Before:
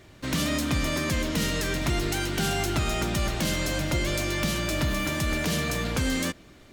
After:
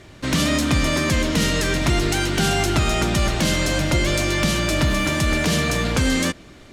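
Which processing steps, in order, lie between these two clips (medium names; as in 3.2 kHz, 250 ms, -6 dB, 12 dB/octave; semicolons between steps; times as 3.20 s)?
low-pass 11 kHz 12 dB/octave; trim +7 dB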